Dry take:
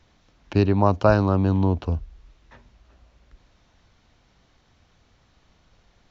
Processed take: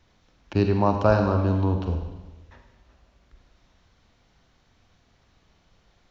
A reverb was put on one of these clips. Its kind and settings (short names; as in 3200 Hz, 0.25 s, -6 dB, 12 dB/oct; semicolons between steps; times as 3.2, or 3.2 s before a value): Schroeder reverb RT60 1.2 s, combs from 33 ms, DRR 4 dB; gain -3 dB